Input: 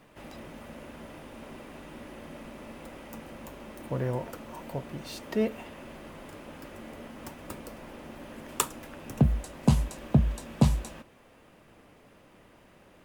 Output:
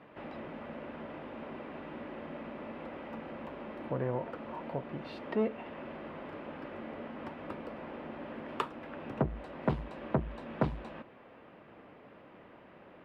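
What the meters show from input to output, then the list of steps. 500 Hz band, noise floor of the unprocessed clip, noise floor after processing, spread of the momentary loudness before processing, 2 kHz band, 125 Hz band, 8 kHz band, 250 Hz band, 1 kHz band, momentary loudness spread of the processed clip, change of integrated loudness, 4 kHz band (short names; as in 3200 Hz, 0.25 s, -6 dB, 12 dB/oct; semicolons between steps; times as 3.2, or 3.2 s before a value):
-0.5 dB, -58 dBFS, -56 dBFS, 19 LU, -1.0 dB, -10.5 dB, under -30 dB, -6.0 dB, 0.0 dB, 20 LU, -9.0 dB, -9.0 dB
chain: HPF 250 Hz 6 dB/oct; high shelf 12000 Hz -11 dB; in parallel at -1 dB: compressor, threshold -44 dBFS, peak gain reduction 22.5 dB; on the sum: air absorption 430 m; core saturation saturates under 740 Hz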